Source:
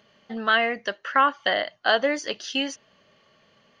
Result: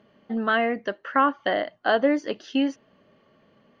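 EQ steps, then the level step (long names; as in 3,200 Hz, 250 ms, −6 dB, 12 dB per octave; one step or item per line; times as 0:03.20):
low-pass filter 1,100 Hz 6 dB per octave
parametric band 280 Hz +6.5 dB 0.95 octaves
+1.5 dB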